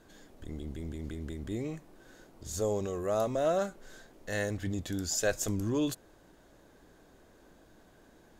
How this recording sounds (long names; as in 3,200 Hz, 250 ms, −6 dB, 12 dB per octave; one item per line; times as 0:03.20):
background noise floor −60 dBFS
spectral slope −4.5 dB per octave